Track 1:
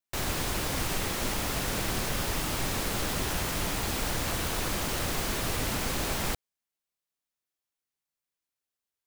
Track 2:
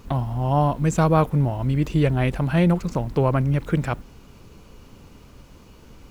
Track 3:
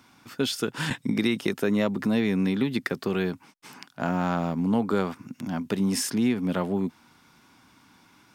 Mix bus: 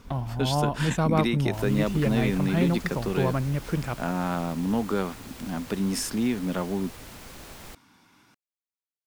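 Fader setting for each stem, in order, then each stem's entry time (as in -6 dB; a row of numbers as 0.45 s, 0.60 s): -13.5 dB, -6.0 dB, -2.0 dB; 1.40 s, 0.00 s, 0.00 s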